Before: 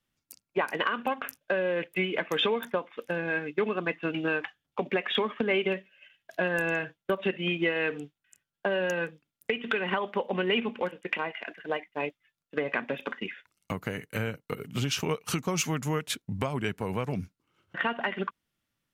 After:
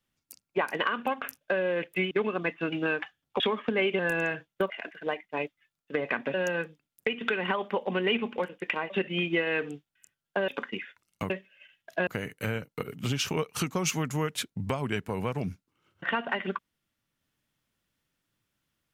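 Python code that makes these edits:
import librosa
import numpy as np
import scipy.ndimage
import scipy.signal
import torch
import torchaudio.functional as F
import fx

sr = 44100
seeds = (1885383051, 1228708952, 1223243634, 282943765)

y = fx.edit(x, sr, fx.cut(start_s=2.11, length_s=1.42),
    fx.cut(start_s=4.82, length_s=0.3),
    fx.move(start_s=5.71, length_s=0.77, to_s=13.79),
    fx.swap(start_s=7.19, length_s=1.58, other_s=11.33, other_length_s=1.64), tone=tone)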